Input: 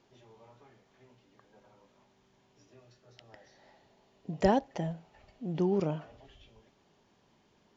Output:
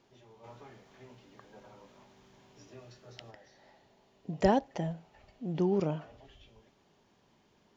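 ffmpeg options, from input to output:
-filter_complex "[0:a]asplit=3[a][b][c];[a]afade=t=out:st=0.43:d=0.02[d];[b]acontrast=89,afade=t=in:st=0.43:d=0.02,afade=t=out:st=3.3:d=0.02[e];[c]afade=t=in:st=3.3:d=0.02[f];[d][e][f]amix=inputs=3:normalize=0"

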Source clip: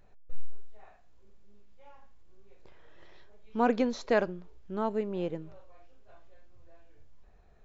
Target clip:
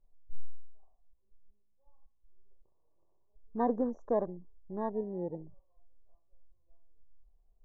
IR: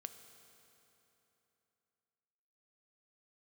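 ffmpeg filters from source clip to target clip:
-af "aemphasis=mode=reproduction:type=50fm,afftfilt=real='re*(1-between(b*sr/4096,1200,5600))':imag='im*(1-between(b*sr/4096,1200,5600))':win_size=4096:overlap=0.75,afwtdn=0.0126,volume=-4dB"

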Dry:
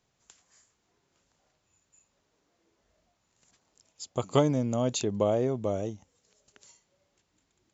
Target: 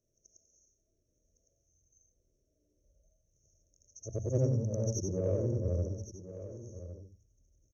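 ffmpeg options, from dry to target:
-filter_complex "[0:a]afftfilt=real='re':imag='-im':win_size=8192:overlap=0.75,bandreject=f=60:t=h:w=6,bandreject=f=120:t=h:w=6,bandreject=f=180:t=h:w=6,bandreject=f=240:t=h:w=6,afftfilt=real='re*(1-between(b*sr/4096,750,6100))':imag='im*(1-between(b*sr/4096,750,6100))':win_size=4096:overlap=0.75,asubboost=boost=9.5:cutoff=89,asplit=2[a][b];[b]asoftclip=type=tanh:threshold=-33dB,volume=-10dB[c];[a][c]amix=inputs=2:normalize=0,asetrate=39289,aresample=44100,atempo=1.12246,asplit=2[d][e];[e]aecho=0:1:1109:0.224[f];[d][f]amix=inputs=2:normalize=0,volume=-1.5dB"

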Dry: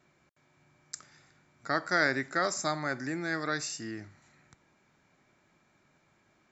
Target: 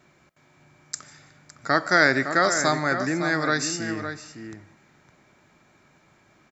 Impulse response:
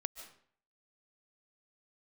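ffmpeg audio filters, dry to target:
-filter_complex "[0:a]asplit=2[a][b];[b]adelay=559.8,volume=-8dB,highshelf=f=4k:g=-12.6[c];[a][c]amix=inputs=2:normalize=0,asplit=2[d][e];[1:a]atrim=start_sample=2205[f];[e][f]afir=irnorm=-1:irlink=0,volume=-6dB[g];[d][g]amix=inputs=2:normalize=0,volume=5.5dB"

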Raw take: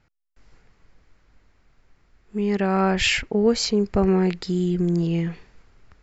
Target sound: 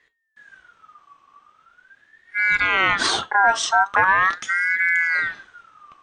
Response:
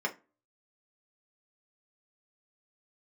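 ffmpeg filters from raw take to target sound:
-filter_complex "[0:a]asplit=2[a][b];[b]highshelf=f=3.7k:g=8[c];[1:a]atrim=start_sample=2205,lowshelf=f=410:g=-8.5[d];[c][d]afir=irnorm=-1:irlink=0,volume=-11dB[e];[a][e]amix=inputs=2:normalize=0,aeval=exprs='val(0)*sin(2*PI*1500*n/s+1500*0.25/0.41*sin(2*PI*0.41*n/s))':c=same,volume=5dB"

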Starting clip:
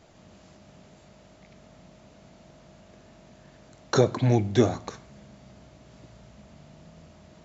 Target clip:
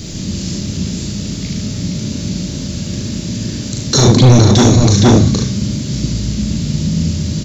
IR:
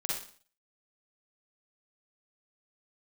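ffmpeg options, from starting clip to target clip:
-filter_complex "[0:a]firequalizer=gain_entry='entry(210,0);entry(700,-23);entry(4700,-2);entry(7800,-4)':delay=0.05:min_phase=1,asoftclip=type=tanh:threshold=-16dB,asplit=2[a][b];[b]aecho=0:1:38|73:0.631|0.501[c];[a][c]amix=inputs=2:normalize=0,acontrast=86,acrossover=split=1500[d][e];[d]volume=21dB,asoftclip=hard,volume=-21dB[f];[e]acontrast=31[g];[f][g]amix=inputs=2:normalize=0,asplit=2[h][i];[i]adelay=466.5,volume=-6dB,highshelf=f=4k:g=-10.5[j];[h][j]amix=inputs=2:normalize=0,alimiter=level_in=25.5dB:limit=-1dB:release=50:level=0:latency=1,volume=-1dB"

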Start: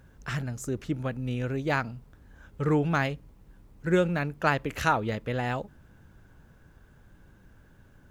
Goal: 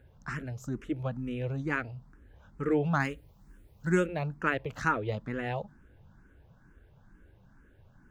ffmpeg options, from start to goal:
-filter_complex "[0:a]asetnsamples=n=441:p=0,asendcmd='3 highshelf g 4;4.06 highshelf g -10',highshelf=f=4k:g=-9,asplit=2[a][b];[b]afreqshift=2.2[c];[a][c]amix=inputs=2:normalize=1"

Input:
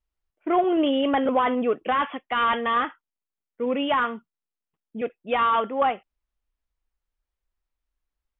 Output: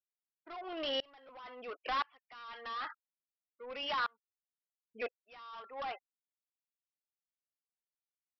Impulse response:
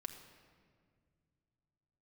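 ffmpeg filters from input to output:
-af "acontrast=61,highpass=880,acompressor=threshold=-20dB:ratio=6,afftfilt=real='re*gte(hypot(re,im),0.0178)':imag='im*gte(hypot(re,im),0.0178)':win_size=1024:overlap=0.75,aresample=11025,asoftclip=type=tanh:threshold=-27dB,aresample=44100,aeval=exprs='val(0)*pow(10,-31*if(lt(mod(-0.98*n/s,1),2*abs(-0.98)/1000),1-mod(-0.98*n/s,1)/(2*abs(-0.98)/1000),(mod(-0.98*n/s,1)-2*abs(-0.98)/1000)/(1-2*abs(-0.98)/1000))/20)':c=same,volume=-1.5dB"

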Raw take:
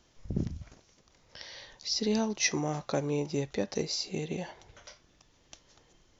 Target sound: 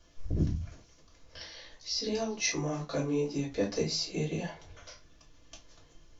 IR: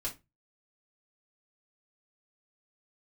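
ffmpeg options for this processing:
-filter_complex "[0:a]asettb=1/sr,asplit=3[a][b][c];[a]atrim=end=1.464[d];[b]atrim=start=1.46:end=3.56,asetpts=PTS-STARTPTS,afade=t=in:d=0.004:c=qsin,afade=t=out:st=2.096:d=0.004:c=qsin,flanger=delay=15:depth=3.4:speed=2.6[e];[c]atrim=start=3.556[f];[d][e]acrossfade=d=0.004:c1=hsin:c2=qsin[g];[g][f]acrossfade=d=0.004:c1=qsin:c2=hsin[h];[1:a]atrim=start_sample=2205[i];[h][i]afir=irnorm=-1:irlink=0"

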